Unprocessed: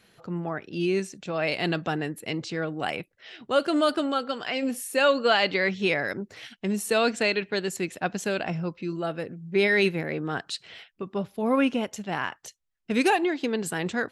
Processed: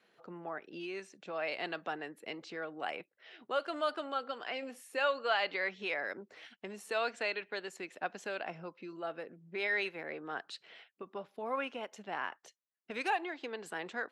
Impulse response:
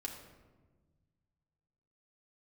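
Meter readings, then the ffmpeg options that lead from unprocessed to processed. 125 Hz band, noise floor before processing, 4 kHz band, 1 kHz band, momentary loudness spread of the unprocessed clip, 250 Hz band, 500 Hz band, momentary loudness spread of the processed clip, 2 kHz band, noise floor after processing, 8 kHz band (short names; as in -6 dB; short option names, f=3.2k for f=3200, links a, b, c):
-23.0 dB, -67 dBFS, -11.5 dB, -8.0 dB, 12 LU, -19.0 dB, -12.0 dB, 14 LU, -8.5 dB, -80 dBFS, -17.5 dB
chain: -filter_complex "[0:a]highpass=320,aemphasis=mode=reproduction:type=75kf,acrossover=split=590|5300[a][b][c];[a]acompressor=threshold=-39dB:ratio=6[d];[d][b][c]amix=inputs=3:normalize=0,volume=-6dB"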